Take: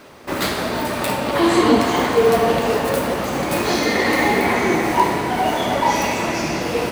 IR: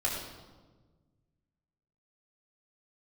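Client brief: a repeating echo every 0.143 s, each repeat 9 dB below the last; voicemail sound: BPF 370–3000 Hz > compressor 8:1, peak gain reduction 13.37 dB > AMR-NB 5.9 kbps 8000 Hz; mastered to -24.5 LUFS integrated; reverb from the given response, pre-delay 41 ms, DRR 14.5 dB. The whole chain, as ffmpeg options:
-filter_complex "[0:a]aecho=1:1:143|286|429|572:0.355|0.124|0.0435|0.0152,asplit=2[a][b];[1:a]atrim=start_sample=2205,adelay=41[c];[b][c]afir=irnorm=-1:irlink=0,volume=-21.5dB[d];[a][d]amix=inputs=2:normalize=0,highpass=370,lowpass=3k,acompressor=threshold=-24dB:ratio=8,volume=6.5dB" -ar 8000 -c:a libopencore_amrnb -b:a 5900

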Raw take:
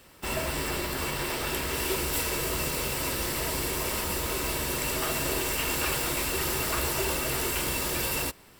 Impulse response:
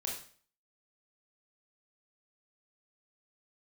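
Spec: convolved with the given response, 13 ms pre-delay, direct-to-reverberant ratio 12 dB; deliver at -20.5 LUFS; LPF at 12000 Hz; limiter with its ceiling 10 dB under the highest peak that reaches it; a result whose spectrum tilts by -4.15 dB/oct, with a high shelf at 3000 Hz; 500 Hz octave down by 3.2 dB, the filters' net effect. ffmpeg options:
-filter_complex "[0:a]lowpass=12k,equalizer=f=500:t=o:g=-4,highshelf=f=3k:g=-8.5,alimiter=level_in=5dB:limit=-24dB:level=0:latency=1,volume=-5dB,asplit=2[a][b];[1:a]atrim=start_sample=2205,adelay=13[c];[b][c]afir=irnorm=-1:irlink=0,volume=-13.5dB[d];[a][d]amix=inputs=2:normalize=0,volume=17dB"

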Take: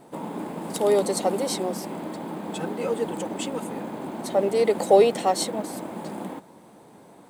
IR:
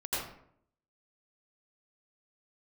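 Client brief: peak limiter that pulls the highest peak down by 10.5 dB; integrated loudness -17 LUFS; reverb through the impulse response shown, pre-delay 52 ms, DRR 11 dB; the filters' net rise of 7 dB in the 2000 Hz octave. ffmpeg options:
-filter_complex "[0:a]equalizer=f=2k:t=o:g=8.5,alimiter=limit=-16dB:level=0:latency=1,asplit=2[a][b];[1:a]atrim=start_sample=2205,adelay=52[c];[b][c]afir=irnorm=-1:irlink=0,volume=-17dB[d];[a][d]amix=inputs=2:normalize=0,volume=11dB"

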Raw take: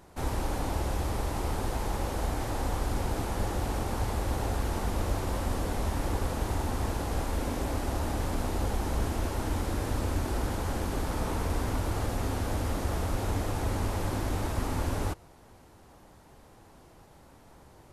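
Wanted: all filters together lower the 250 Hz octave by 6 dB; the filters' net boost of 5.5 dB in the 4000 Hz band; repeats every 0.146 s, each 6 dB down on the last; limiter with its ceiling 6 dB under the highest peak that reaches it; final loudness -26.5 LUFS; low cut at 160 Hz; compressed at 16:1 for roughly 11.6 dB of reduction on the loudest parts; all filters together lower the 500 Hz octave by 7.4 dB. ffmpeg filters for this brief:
-af "highpass=160,equalizer=f=250:t=o:g=-4,equalizer=f=500:t=o:g=-8.5,equalizer=f=4k:t=o:g=7,acompressor=threshold=-45dB:ratio=16,alimiter=level_in=17dB:limit=-24dB:level=0:latency=1,volume=-17dB,aecho=1:1:146|292|438|584|730|876:0.501|0.251|0.125|0.0626|0.0313|0.0157,volume=22.5dB"

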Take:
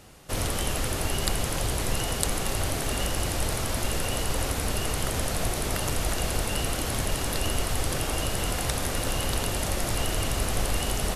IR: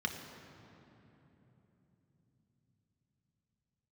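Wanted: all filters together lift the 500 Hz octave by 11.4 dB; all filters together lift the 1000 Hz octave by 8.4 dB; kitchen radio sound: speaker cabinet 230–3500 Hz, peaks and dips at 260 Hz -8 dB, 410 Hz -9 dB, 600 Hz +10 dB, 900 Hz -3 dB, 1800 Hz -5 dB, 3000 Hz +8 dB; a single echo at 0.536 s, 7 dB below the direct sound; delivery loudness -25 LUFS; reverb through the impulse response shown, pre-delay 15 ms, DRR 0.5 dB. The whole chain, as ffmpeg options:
-filter_complex "[0:a]equalizer=f=500:t=o:g=6.5,equalizer=f=1k:t=o:g=9,aecho=1:1:536:0.447,asplit=2[a][b];[1:a]atrim=start_sample=2205,adelay=15[c];[b][c]afir=irnorm=-1:irlink=0,volume=-5dB[d];[a][d]amix=inputs=2:normalize=0,highpass=230,equalizer=f=260:t=q:w=4:g=-8,equalizer=f=410:t=q:w=4:g=-9,equalizer=f=600:t=q:w=4:g=10,equalizer=f=900:t=q:w=4:g=-3,equalizer=f=1.8k:t=q:w=4:g=-5,equalizer=f=3k:t=q:w=4:g=8,lowpass=f=3.5k:w=0.5412,lowpass=f=3.5k:w=1.3066,volume=-3.5dB"

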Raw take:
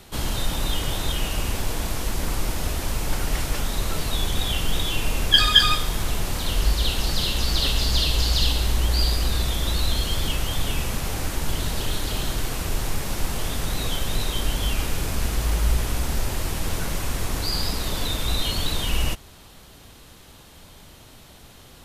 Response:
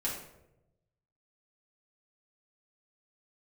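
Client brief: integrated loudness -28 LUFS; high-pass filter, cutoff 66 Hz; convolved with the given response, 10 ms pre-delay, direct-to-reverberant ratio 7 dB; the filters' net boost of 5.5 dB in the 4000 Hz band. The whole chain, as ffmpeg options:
-filter_complex "[0:a]highpass=66,equalizer=f=4k:t=o:g=7,asplit=2[a][b];[1:a]atrim=start_sample=2205,adelay=10[c];[b][c]afir=irnorm=-1:irlink=0,volume=-11dB[d];[a][d]amix=inputs=2:normalize=0,volume=-7dB"

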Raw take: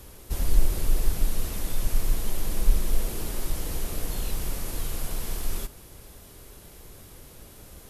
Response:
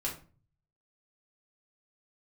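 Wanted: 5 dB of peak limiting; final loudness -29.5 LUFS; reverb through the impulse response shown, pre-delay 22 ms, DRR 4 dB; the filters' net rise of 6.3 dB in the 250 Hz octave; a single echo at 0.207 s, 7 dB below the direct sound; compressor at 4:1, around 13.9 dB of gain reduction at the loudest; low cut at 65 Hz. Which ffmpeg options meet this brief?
-filter_complex "[0:a]highpass=65,equalizer=f=250:t=o:g=8.5,acompressor=threshold=-42dB:ratio=4,alimiter=level_in=11.5dB:limit=-24dB:level=0:latency=1,volume=-11.5dB,aecho=1:1:207:0.447,asplit=2[a][b];[1:a]atrim=start_sample=2205,adelay=22[c];[b][c]afir=irnorm=-1:irlink=0,volume=-7dB[d];[a][d]amix=inputs=2:normalize=0,volume=14dB"

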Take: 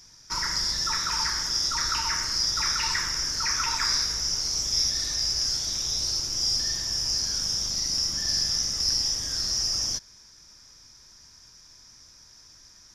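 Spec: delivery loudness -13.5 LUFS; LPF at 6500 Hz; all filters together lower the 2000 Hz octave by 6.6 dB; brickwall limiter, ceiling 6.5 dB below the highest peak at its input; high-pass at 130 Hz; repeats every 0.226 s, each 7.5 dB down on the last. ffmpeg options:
-af "highpass=130,lowpass=6.5k,equalizer=f=2k:t=o:g=-8.5,alimiter=limit=-22dB:level=0:latency=1,aecho=1:1:226|452|678|904|1130:0.422|0.177|0.0744|0.0312|0.0131,volume=14.5dB"

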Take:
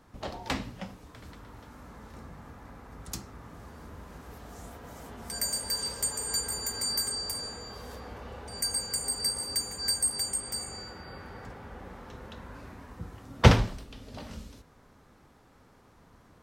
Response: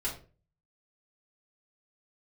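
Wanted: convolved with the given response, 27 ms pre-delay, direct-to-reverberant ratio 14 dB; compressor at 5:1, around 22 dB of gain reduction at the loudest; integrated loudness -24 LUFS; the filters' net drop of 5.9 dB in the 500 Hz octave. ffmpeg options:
-filter_complex "[0:a]equalizer=f=500:t=o:g=-7,acompressor=threshold=-37dB:ratio=5,asplit=2[a][b];[1:a]atrim=start_sample=2205,adelay=27[c];[b][c]afir=irnorm=-1:irlink=0,volume=-18dB[d];[a][d]amix=inputs=2:normalize=0,volume=17.5dB"

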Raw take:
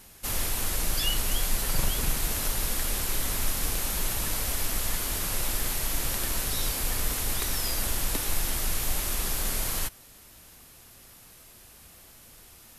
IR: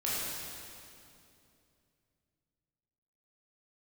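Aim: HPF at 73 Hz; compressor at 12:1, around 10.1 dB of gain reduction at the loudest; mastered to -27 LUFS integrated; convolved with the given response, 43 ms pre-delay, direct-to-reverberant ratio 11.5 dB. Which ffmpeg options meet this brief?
-filter_complex "[0:a]highpass=73,acompressor=threshold=-35dB:ratio=12,asplit=2[a][b];[1:a]atrim=start_sample=2205,adelay=43[c];[b][c]afir=irnorm=-1:irlink=0,volume=-18.5dB[d];[a][d]amix=inputs=2:normalize=0,volume=9dB"

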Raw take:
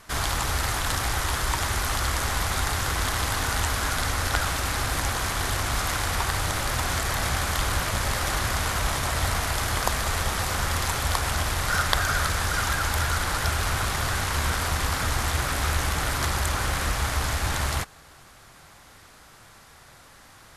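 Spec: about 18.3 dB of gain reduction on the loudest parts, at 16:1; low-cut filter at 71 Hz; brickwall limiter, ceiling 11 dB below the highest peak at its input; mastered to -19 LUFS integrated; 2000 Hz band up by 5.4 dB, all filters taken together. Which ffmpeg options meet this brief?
-af "highpass=71,equalizer=f=2k:t=o:g=7,acompressor=threshold=-32dB:ratio=16,volume=17dB,alimiter=limit=-9.5dB:level=0:latency=1"

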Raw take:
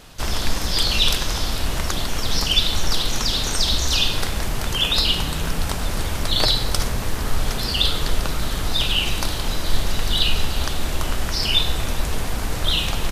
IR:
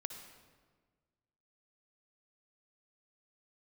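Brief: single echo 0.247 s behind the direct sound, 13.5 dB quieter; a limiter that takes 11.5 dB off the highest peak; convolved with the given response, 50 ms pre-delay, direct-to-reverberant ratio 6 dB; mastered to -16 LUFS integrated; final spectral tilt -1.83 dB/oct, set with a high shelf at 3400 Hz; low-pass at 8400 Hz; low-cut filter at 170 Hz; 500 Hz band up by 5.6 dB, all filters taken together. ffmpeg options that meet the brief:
-filter_complex "[0:a]highpass=170,lowpass=8.4k,equalizer=f=500:t=o:g=7,highshelf=f=3.4k:g=4,alimiter=limit=-12dB:level=0:latency=1,aecho=1:1:247:0.211,asplit=2[a][b];[1:a]atrim=start_sample=2205,adelay=50[c];[b][c]afir=irnorm=-1:irlink=0,volume=-4dB[d];[a][d]amix=inputs=2:normalize=0,volume=5.5dB"

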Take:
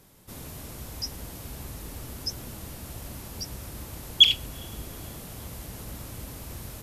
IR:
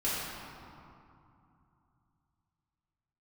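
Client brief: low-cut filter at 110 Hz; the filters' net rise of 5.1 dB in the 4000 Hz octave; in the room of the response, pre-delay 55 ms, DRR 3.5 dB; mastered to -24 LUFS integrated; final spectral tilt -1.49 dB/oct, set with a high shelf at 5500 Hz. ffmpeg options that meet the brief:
-filter_complex "[0:a]highpass=110,equalizer=f=4k:t=o:g=4.5,highshelf=f=5.5k:g=6,asplit=2[a][b];[1:a]atrim=start_sample=2205,adelay=55[c];[b][c]afir=irnorm=-1:irlink=0,volume=-12dB[d];[a][d]amix=inputs=2:normalize=0,volume=-5dB"

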